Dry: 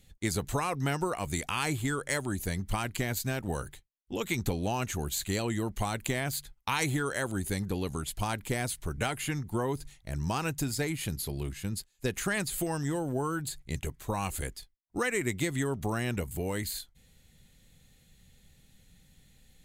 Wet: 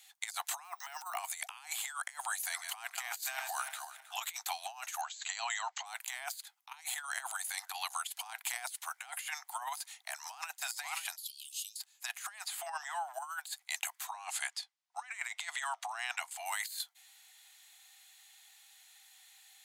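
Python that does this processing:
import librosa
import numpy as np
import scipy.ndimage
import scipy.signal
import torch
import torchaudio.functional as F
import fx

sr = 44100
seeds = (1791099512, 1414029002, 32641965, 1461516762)

y = fx.resample_bad(x, sr, factor=2, down='filtered', up='hold', at=(0.64, 1.18))
y = fx.reverse_delay_fb(y, sr, ms=158, feedback_pct=52, wet_db=-11.5, at=(2.27, 4.39))
y = fx.brickwall_lowpass(y, sr, high_hz=7900.0, at=(5.01, 5.86))
y = fx.chopper(y, sr, hz=fx.line((6.39, 3.4), (8.57, 8.8)), depth_pct=60, duty_pct=85, at=(6.39, 8.57), fade=0.02)
y = fx.echo_throw(y, sr, start_s=9.72, length_s=0.79, ms=530, feedback_pct=10, wet_db=-9.0)
y = fx.steep_highpass(y, sr, hz=2900.0, slope=72, at=(11.16, 11.78))
y = fx.lowpass(y, sr, hz=1800.0, slope=6, at=(12.44, 13.14))
y = fx.lowpass(y, sr, hz=6900.0, slope=12, at=(14.07, 16.46))
y = scipy.signal.sosfilt(scipy.signal.butter(16, 710.0, 'highpass', fs=sr, output='sos'), y)
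y = fx.peak_eq(y, sr, hz=1600.0, db=-2.0, octaves=2.0)
y = fx.over_compress(y, sr, threshold_db=-42.0, ratio=-0.5)
y = y * 10.0 ** (3.0 / 20.0)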